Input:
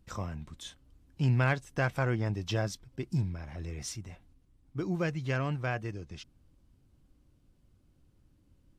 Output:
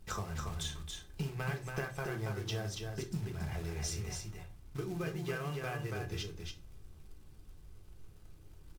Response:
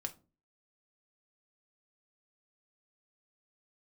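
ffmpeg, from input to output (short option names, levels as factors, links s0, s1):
-filter_complex "[0:a]equalizer=f=250:w=7.5:g=-13.5,bandreject=f=60:t=h:w=6,bandreject=f=120:t=h:w=6,bandreject=f=180:t=h:w=6,bandreject=f=240:t=h:w=6,bandreject=f=300:t=h:w=6,aecho=1:1:2.5:0.38,acompressor=threshold=0.00794:ratio=20,acrusher=bits=4:mode=log:mix=0:aa=0.000001,aecho=1:1:280:0.596[s0];[1:a]atrim=start_sample=2205,asetrate=32634,aresample=44100[s1];[s0][s1]afir=irnorm=-1:irlink=0,volume=2.11"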